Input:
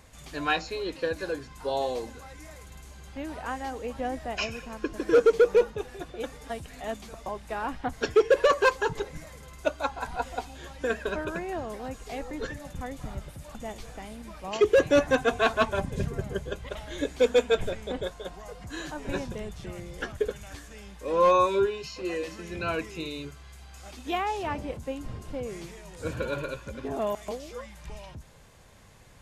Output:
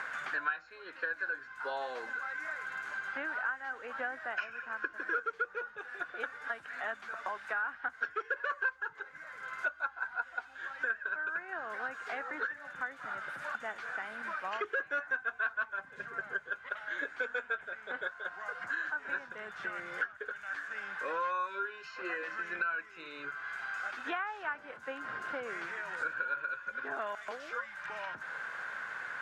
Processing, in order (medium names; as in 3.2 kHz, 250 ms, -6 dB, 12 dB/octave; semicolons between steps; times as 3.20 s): band-pass filter 1.5 kHz, Q 8.7; three bands compressed up and down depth 100%; trim +8 dB